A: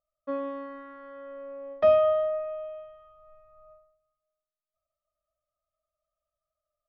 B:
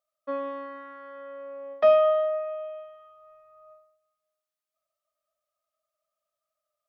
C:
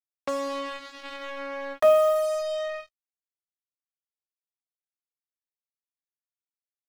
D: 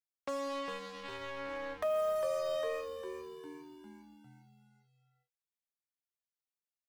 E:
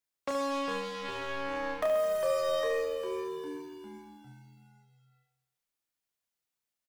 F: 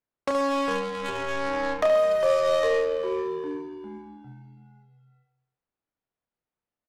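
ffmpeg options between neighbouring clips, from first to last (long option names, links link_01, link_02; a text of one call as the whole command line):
ffmpeg -i in.wav -af "highpass=frequency=570:poles=1,volume=4dB" out.wav
ffmpeg -i in.wav -af "acrusher=bits=5:mix=0:aa=0.5,acompressor=mode=upward:threshold=-24dB:ratio=2.5" out.wav
ffmpeg -i in.wav -filter_complex "[0:a]asplit=2[link_01][link_02];[link_02]asplit=6[link_03][link_04][link_05][link_06][link_07][link_08];[link_03]adelay=403,afreqshift=-82,volume=-11dB[link_09];[link_04]adelay=806,afreqshift=-164,volume=-16.2dB[link_10];[link_05]adelay=1209,afreqshift=-246,volume=-21.4dB[link_11];[link_06]adelay=1612,afreqshift=-328,volume=-26.6dB[link_12];[link_07]adelay=2015,afreqshift=-410,volume=-31.8dB[link_13];[link_08]adelay=2418,afreqshift=-492,volume=-37dB[link_14];[link_09][link_10][link_11][link_12][link_13][link_14]amix=inputs=6:normalize=0[link_15];[link_01][link_15]amix=inputs=2:normalize=0,alimiter=limit=-19.5dB:level=0:latency=1:release=270,volume=-6.5dB" out.wav
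ffmpeg -i in.wav -af "aecho=1:1:30|72|130.8|213.1|328.4:0.631|0.398|0.251|0.158|0.1,volume=4.5dB" out.wav
ffmpeg -i in.wav -af "adynamicsmooth=sensitivity=4.5:basefreq=1300,crystalizer=i=1.5:c=0,volume=7.5dB" out.wav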